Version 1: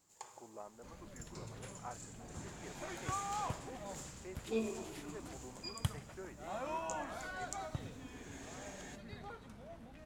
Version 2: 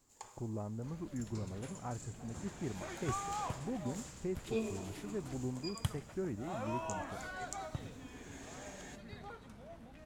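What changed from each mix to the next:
speech: remove HPF 680 Hz 12 dB/oct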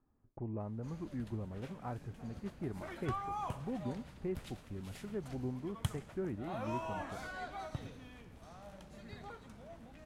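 first sound: muted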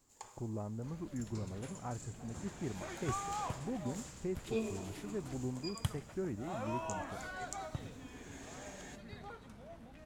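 first sound: unmuted

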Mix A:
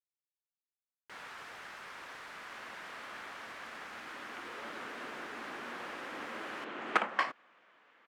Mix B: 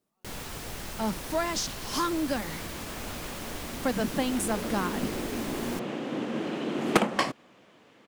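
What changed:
speech: unmuted; first sound: entry -0.85 s; master: remove band-pass 1500 Hz, Q 1.5

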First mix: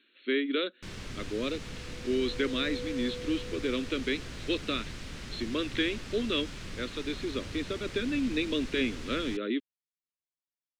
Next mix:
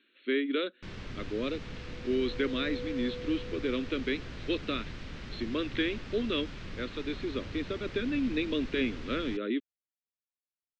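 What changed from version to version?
master: add air absorption 150 m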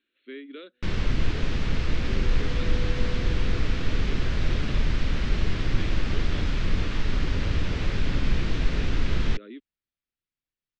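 speech -11.5 dB; first sound +11.5 dB; master: add low shelf 62 Hz +12 dB

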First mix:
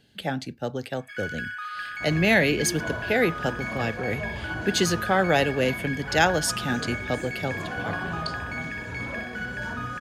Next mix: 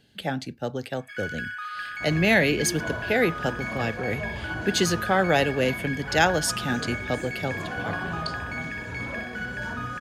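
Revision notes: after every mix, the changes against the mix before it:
none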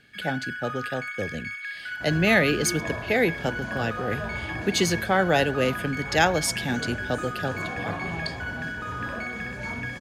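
first sound: entry -0.95 s

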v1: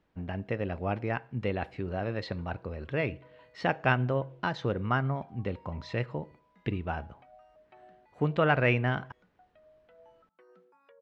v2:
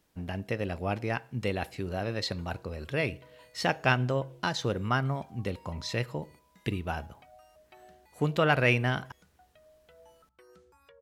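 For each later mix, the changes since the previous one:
background: remove rippled Chebyshev high-pass 170 Hz, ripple 3 dB; master: remove LPF 2400 Hz 12 dB/oct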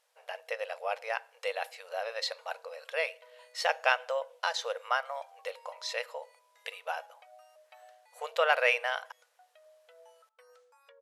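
master: add brick-wall FIR band-pass 460–13000 Hz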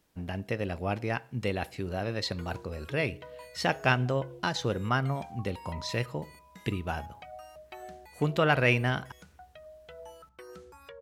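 background +10.0 dB; master: remove brick-wall FIR band-pass 460–13000 Hz

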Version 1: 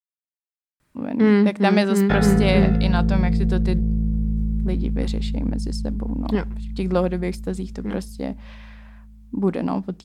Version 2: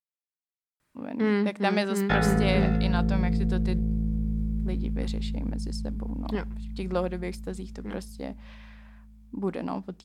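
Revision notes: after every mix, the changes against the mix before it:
speech -5.0 dB; master: add low shelf 320 Hz -6.5 dB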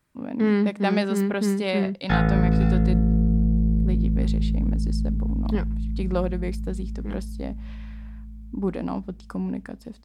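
speech: entry -0.80 s; master: add low shelf 320 Hz +6.5 dB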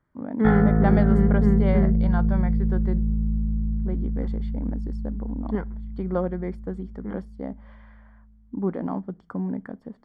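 background: entry -1.65 s; master: add polynomial smoothing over 41 samples

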